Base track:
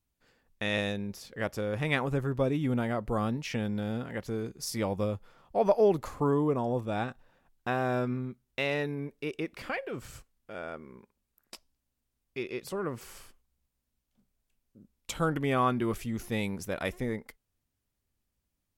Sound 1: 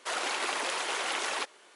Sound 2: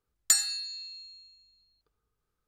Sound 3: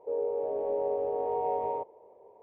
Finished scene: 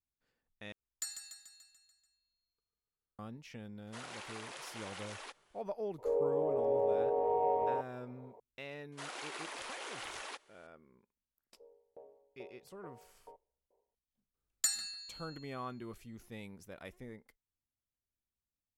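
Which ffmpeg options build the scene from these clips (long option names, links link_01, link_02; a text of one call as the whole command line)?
ffmpeg -i bed.wav -i cue0.wav -i cue1.wav -i cue2.wav -filter_complex "[2:a]asplit=2[link_01][link_02];[1:a]asplit=2[link_03][link_04];[3:a]asplit=2[link_05][link_06];[0:a]volume=-16dB[link_07];[link_01]aecho=1:1:145|290|435|580|725|870|1015:0.398|0.227|0.129|0.0737|0.042|0.024|0.0137[link_08];[link_06]aeval=exprs='val(0)*pow(10,-36*if(lt(mod(2.3*n/s,1),2*abs(2.3)/1000),1-mod(2.3*n/s,1)/(2*abs(2.3)/1000),(mod(2.3*n/s,1)-2*abs(2.3)/1000)/(1-2*abs(2.3)/1000))/20)':channel_layout=same[link_09];[link_02]asplit=2[link_10][link_11];[link_11]adelay=148,lowpass=frequency=1700:poles=1,volume=-8dB,asplit=2[link_12][link_13];[link_13]adelay=148,lowpass=frequency=1700:poles=1,volume=0.33,asplit=2[link_14][link_15];[link_15]adelay=148,lowpass=frequency=1700:poles=1,volume=0.33,asplit=2[link_16][link_17];[link_17]adelay=148,lowpass=frequency=1700:poles=1,volume=0.33[link_18];[link_10][link_12][link_14][link_16][link_18]amix=inputs=5:normalize=0[link_19];[link_07]asplit=2[link_20][link_21];[link_20]atrim=end=0.724[link_22];[link_08]atrim=end=2.47,asetpts=PTS-STARTPTS,volume=-18dB[link_23];[link_21]atrim=start=3.186[link_24];[link_03]atrim=end=1.75,asetpts=PTS-STARTPTS,volume=-15.5dB,afade=type=in:duration=0.004:curve=hsin,afade=type=out:start_time=1.746:duration=0.004:curve=hsin,adelay=3870[link_25];[link_05]atrim=end=2.42,asetpts=PTS-STARTPTS,volume=-1dB,afade=type=in:duration=0.004:curve=hsin,afade=type=out:start_time=2.416:duration=0.004:curve=hsin,adelay=5980[link_26];[link_04]atrim=end=1.75,asetpts=PTS-STARTPTS,volume=-12.5dB,afade=type=in:duration=0.004:curve=hsin,afade=type=out:start_time=1.746:duration=0.004:curve=hsin,adelay=8920[link_27];[link_09]atrim=end=2.42,asetpts=PTS-STARTPTS,volume=-17.5dB,afade=type=in:duration=0.004:curve=hsin,afade=type=out:start_time=2.416:duration=0.004:curve=hsin,adelay=11530[link_28];[link_19]atrim=end=2.47,asetpts=PTS-STARTPTS,volume=-9dB,afade=type=in:duration=0.004:curve=hsin,afade=type=out:start_time=2.466:duration=0.004:curve=hsin,adelay=14340[link_29];[link_22][link_23]acrossfade=duration=0.004:curve1=hsin:curve2=hsin[link_30];[link_30][link_24]acrossfade=duration=0.004:curve1=hsin:curve2=hsin[link_31];[link_31][link_25][link_26][link_27][link_28][link_29]amix=inputs=6:normalize=0" out.wav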